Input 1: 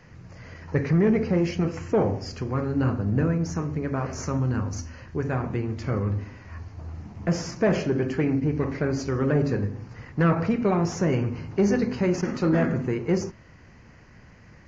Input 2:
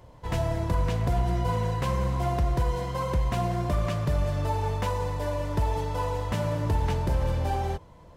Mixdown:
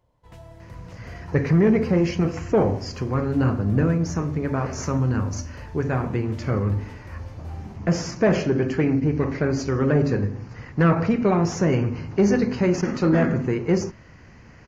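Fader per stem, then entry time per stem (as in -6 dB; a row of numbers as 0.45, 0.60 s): +3.0, -17.0 dB; 0.60, 0.00 s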